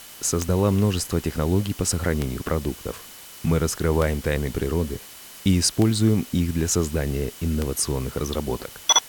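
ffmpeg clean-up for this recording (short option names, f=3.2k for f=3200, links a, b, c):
-af "adeclick=t=4,bandreject=f=3k:w=30,afwtdn=0.0079"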